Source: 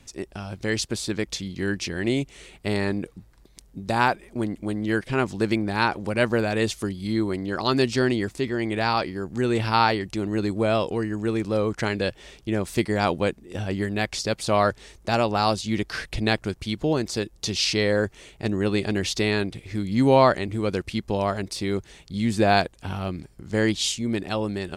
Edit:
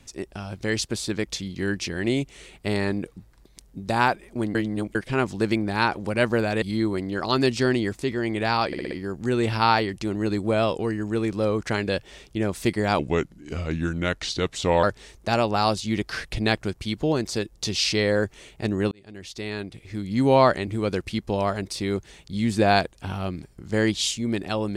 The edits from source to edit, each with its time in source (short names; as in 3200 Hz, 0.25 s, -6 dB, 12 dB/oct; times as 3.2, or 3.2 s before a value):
4.55–4.95 reverse
6.62–6.98 cut
9.03 stutter 0.06 s, 5 plays
13.11–14.64 speed 83%
18.72–20.29 fade in